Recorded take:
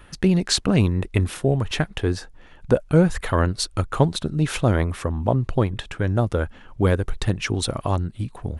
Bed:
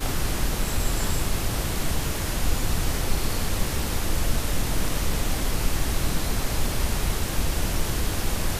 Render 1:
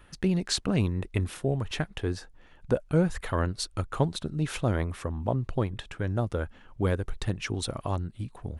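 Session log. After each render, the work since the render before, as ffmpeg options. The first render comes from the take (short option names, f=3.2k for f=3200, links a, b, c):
-af "volume=-7.5dB"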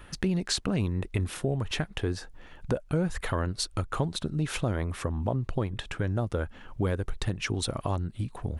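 -filter_complex "[0:a]asplit=2[a][b];[b]alimiter=limit=-18.5dB:level=0:latency=1:release=37,volume=1dB[c];[a][c]amix=inputs=2:normalize=0,acompressor=threshold=-30dB:ratio=2"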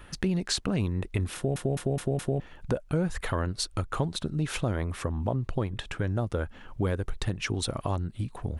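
-filter_complex "[0:a]asplit=6[a][b][c][d][e][f];[a]atrim=end=1.562[g];[b]atrim=start=1.348:end=1.562[h];[c]atrim=start=1.348:end=1.562[i];[d]atrim=start=1.348:end=1.562[j];[e]atrim=start=1.348:end=1.562[k];[f]atrim=start=2.398[l];[g][h]acrossfade=d=0.004:c1=hsin:c2=hsin[m];[m][i]acrossfade=d=0.004:c1=hsin:c2=hsin[n];[n][j]acrossfade=d=0.004:c1=hsin:c2=hsin[o];[o][k]acrossfade=d=0.004:c1=hsin:c2=hsin[p];[p][l]acrossfade=d=0.004:c1=hsin:c2=hsin"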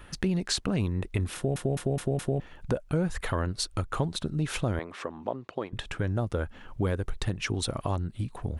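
-filter_complex "[0:a]asettb=1/sr,asplit=3[a][b][c];[a]atrim=end=4.794[d];[b]atrim=start=4.79:end=5.73,asetpts=PTS-STARTPTS,afade=t=in:d=0.004:c=qsin,afade=t=out:st=0.936:d=0.004:c=qsin,highpass=330,lowpass=5.2k[e];[c]atrim=start=5.726[f];[d][e]acrossfade=d=0.004:c1=hsin:c2=qsin[g];[g][f]acrossfade=d=0.004:c1=qsin:c2=hsin"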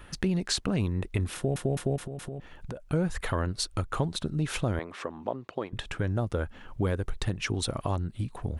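-filter_complex "[0:a]asettb=1/sr,asplit=3[a][b][c];[a]atrim=end=1.964[d];[b]atrim=start=1.96:end=2.9,asetpts=PTS-STARTPTS,afade=t=in:d=0.004:c=qsin,afade=t=out:st=0.936:d=0.004:c=qsin,acompressor=threshold=-34dB:ratio=5:attack=3.2:release=140:knee=1:detection=peak[e];[c]atrim=start=2.896[f];[d][e]acrossfade=d=0.004:c1=hsin:c2=qsin[g];[g][f]acrossfade=d=0.004:c1=qsin:c2=hsin"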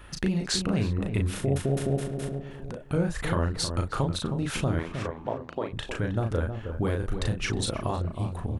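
-filter_complex "[0:a]asplit=2[a][b];[b]adelay=36,volume=-4dB[c];[a][c]amix=inputs=2:normalize=0,asplit=2[d][e];[e]adelay=315,lowpass=f=1k:p=1,volume=-7dB,asplit=2[f][g];[g]adelay=315,lowpass=f=1k:p=1,volume=0.3,asplit=2[h][i];[i]adelay=315,lowpass=f=1k:p=1,volume=0.3,asplit=2[j][k];[k]adelay=315,lowpass=f=1k:p=1,volume=0.3[l];[d][f][h][j][l]amix=inputs=5:normalize=0"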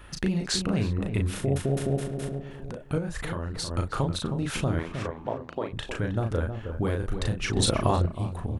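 -filter_complex "[0:a]asettb=1/sr,asplit=3[a][b][c];[a]atrim=end=2.984[d];[b]atrim=start=2.98:end=3.71,asetpts=PTS-STARTPTS,afade=t=in:d=0.004:c=qsin,afade=t=out:st=0.726:d=0.004:c=qsin,acompressor=threshold=-29dB:ratio=3:attack=3.2:release=140:knee=1:detection=peak[e];[c]atrim=start=3.706[f];[d][e]acrossfade=d=0.004:c1=hsin:c2=qsin[g];[g][f]acrossfade=d=0.004:c1=qsin:c2=hsin,asplit=3[h][i][j];[h]atrim=end=7.562[k];[i]atrim=start=7.558:end=8.062,asetpts=PTS-STARTPTS,volume=6dB[l];[j]atrim=start=8.058[m];[k][l]acrossfade=d=0.004:c1=hsin:c2=hsin[n];[n][m]acrossfade=d=0.004:c1=hsin:c2=hsin"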